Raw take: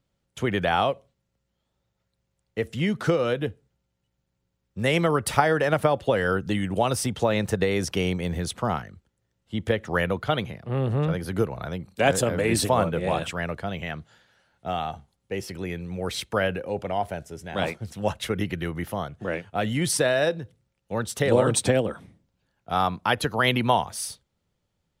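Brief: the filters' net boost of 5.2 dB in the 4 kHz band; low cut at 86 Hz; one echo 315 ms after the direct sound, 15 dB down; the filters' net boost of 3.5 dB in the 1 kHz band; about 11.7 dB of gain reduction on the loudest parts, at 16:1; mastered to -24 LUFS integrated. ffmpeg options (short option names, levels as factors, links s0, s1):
-af "highpass=86,equalizer=f=1000:t=o:g=4.5,equalizer=f=4000:t=o:g=6.5,acompressor=threshold=0.0794:ratio=16,aecho=1:1:315:0.178,volume=1.68"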